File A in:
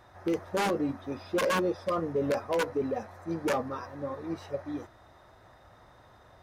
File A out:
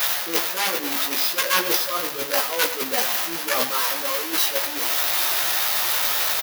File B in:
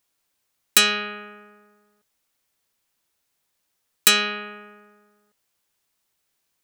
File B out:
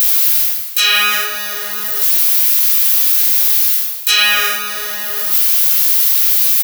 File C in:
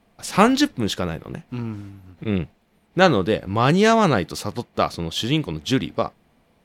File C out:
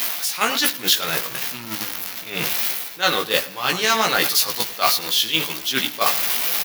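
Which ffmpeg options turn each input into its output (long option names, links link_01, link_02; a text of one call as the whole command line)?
ffmpeg -i in.wav -filter_complex "[0:a]aeval=exprs='val(0)+0.5*0.0355*sgn(val(0))':channel_layout=same,areverse,acompressor=threshold=-30dB:ratio=5,areverse,equalizer=frequency=8200:width_type=o:width=0.74:gain=-10,asplit=2[link_01][link_02];[link_02]adelay=106,lowpass=frequency=2700:poles=1,volume=-10.5dB,asplit=2[link_03][link_04];[link_04]adelay=106,lowpass=frequency=2700:poles=1,volume=0.42,asplit=2[link_05][link_06];[link_06]adelay=106,lowpass=frequency=2700:poles=1,volume=0.42,asplit=2[link_07][link_08];[link_08]adelay=106,lowpass=frequency=2700:poles=1,volume=0.42[link_09];[link_03][link_05][link_07][link_09]amix=inputs=4:normalize=0[link_10];[link_01][link_10]amix=inputs=2:normalize=0,agate=range=-9dB:threshold=-30dB:ratio=16:detection=peak,aderivative,bandreject=frequency=50:width_type=h:width=6,bandreject=frequency=100:width_type=h:width=6,acontrast=75,flanger=delay=15.5:depth=3:speed=1.4,alimiter=level_in=28.5dB:limit=-1dB:release=50:level=0:latency=1,volume=-1dB" out.wav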